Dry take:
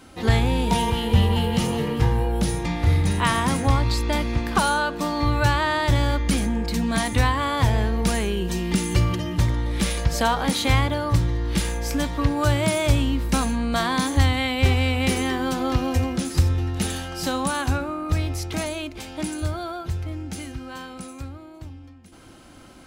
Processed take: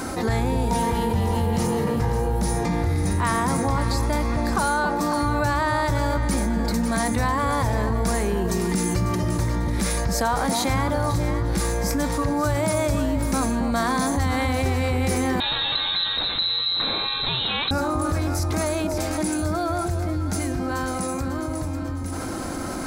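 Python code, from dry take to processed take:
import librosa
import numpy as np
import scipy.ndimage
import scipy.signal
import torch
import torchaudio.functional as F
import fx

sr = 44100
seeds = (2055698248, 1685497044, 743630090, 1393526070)

y = fx.low_shelf(x, sr, hz=190.0, db=-6.0)
y = fx.echo_alternate(y, sr, ms=273, hz=900.0, feedback_pct=59, wet_db=-6.5)
y = fx.freq_invert(y, sr, carrier_hz=4000, at=(15.4, 17.71))
y = fx.peak_eq(y, sr, hz=3000.0, db=-13.5, octaves=0.72)
y = fx.env_flatten(y, sr, amount_pct=70)
y = F.gain(torch.from_numpy(y), -3.5).numpy()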